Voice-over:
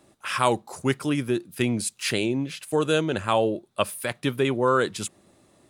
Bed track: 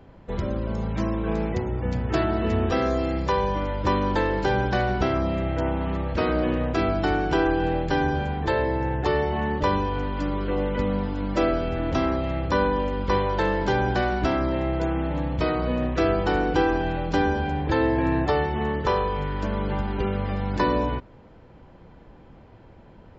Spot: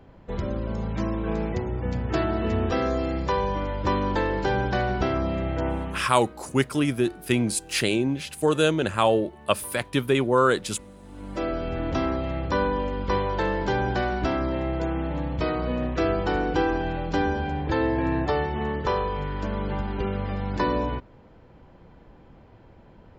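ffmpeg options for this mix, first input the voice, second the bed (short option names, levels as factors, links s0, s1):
-filter_complex "[0:a]adelay=5700,volume=1.19[s0];[1:a]volume=8.91,afade=t=out:st=5.73:d=0.39:silence=0.0891251,afade=t=in:st=11.01:d=0.75:silence=0.0944061[s1];[s0][s1]amix=inputs=2:normalize=0"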